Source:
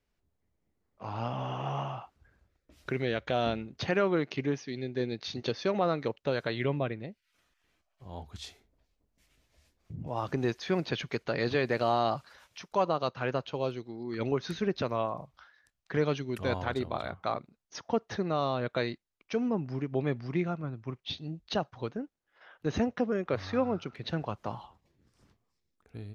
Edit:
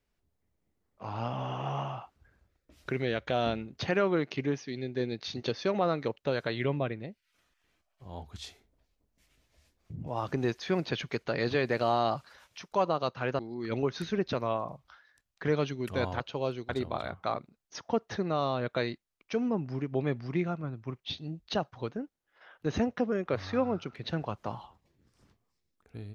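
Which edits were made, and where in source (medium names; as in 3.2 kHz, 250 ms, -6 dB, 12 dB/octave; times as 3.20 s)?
13.39–13.88 s: move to 16.69 s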